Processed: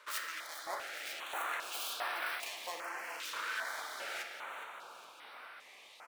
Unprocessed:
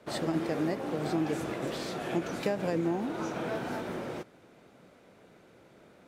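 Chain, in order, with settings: tracing distortion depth 0.39 ms; peaking EQ 190 Hz -10 dB 2.2 oct; reverse; compression, threshold -42 dBFS, peak gain reduction 13 dB; reverse; LFO high-pass saw up 1.5 Hz 920–3800 Hz; frequency-shifting echo 414 ms, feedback 58%, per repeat -35 Hz, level -11 dB; on a send at -3 dB: reverberation RT60 2.9 s, pre-delay 5 ms; on the sum: step-sequenced notch 2.5 Hz 760–6900 Hz; trim +8 dB

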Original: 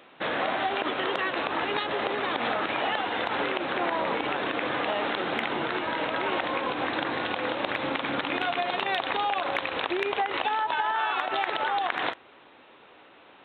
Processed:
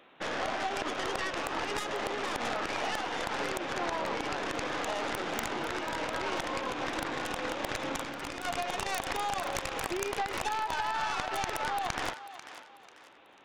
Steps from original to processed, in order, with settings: tracing distortion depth 0.28 ms; 8.00–8.45 s: compressor with a negative ratio -34 dBFS, ratio -1; thinning echo 492 ms, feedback 37%, high-pass 590 Hz, level -12 dB; trim -5.5 dB

